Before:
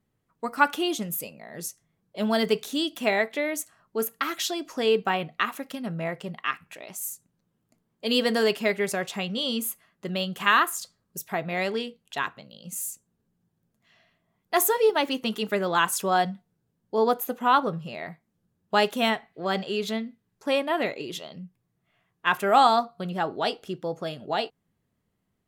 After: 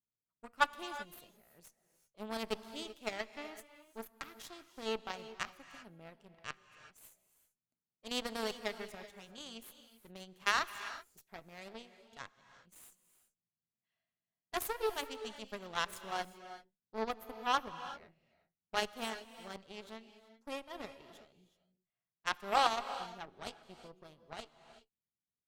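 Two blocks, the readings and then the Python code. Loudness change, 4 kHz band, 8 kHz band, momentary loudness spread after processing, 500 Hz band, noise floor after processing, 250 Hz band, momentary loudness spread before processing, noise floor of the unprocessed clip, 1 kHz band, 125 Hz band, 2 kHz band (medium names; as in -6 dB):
-13.0 dB, -12.5 dB, -15.5 dB, 21 LU, -16.5 dB, under -85 dBFS, -18.5 dB, 15 LU, -76 dBFS, -13.0 dB, -21.0 dB, -12.5 dB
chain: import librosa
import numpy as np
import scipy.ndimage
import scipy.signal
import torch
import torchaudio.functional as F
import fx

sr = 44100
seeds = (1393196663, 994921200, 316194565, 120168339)

y = fx.cheby_harmonics(x, sr, harmonics=(3, 5, 7, 8), levels_db=(-13, -38, -27, -31), full_scale_db=-5.5)
y = fx.rev_gated(y, sr, seeds[0], gate_ms=410, shape='rising', drr_db=11.5)
y = y * librosa.db_to_amplitude(-6.0)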